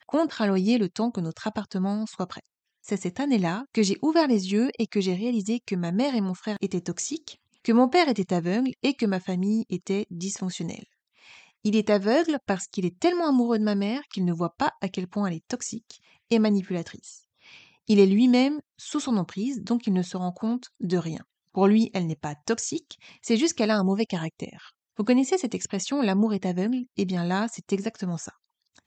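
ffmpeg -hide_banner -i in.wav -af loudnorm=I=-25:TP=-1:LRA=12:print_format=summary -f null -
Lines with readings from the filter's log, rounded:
Input Integrated:    -25.9 LUFS
Input True Peak:      -6.7 dBTP
Input LRA:             3.4 LU
Input Threshold:     -36.4 LUFS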